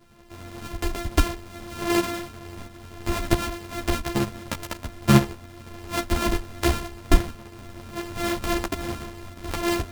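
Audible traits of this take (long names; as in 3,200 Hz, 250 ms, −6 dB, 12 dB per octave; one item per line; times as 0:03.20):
a buzz of ramps at a fixed pitch in blocks of 128 samples
tremolo saw up 1.5 Hz, depth 55%
a shimmering, thickened sound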